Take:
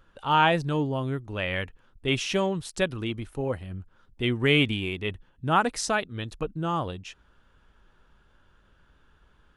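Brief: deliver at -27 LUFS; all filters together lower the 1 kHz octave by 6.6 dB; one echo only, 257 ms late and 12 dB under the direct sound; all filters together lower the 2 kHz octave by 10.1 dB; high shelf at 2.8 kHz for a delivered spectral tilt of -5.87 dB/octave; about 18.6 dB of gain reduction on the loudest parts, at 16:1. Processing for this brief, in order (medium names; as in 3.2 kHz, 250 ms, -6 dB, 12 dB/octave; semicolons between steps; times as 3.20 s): peaking EQ 1 kHz -5 dB; peaking EQ 2 kHz -8.5 dB; treble shelf 2.8 kHz -8 dB; compression 16:1, threshold -38 dBFS; delay 257 ms -12 dB; trim +16.5 dB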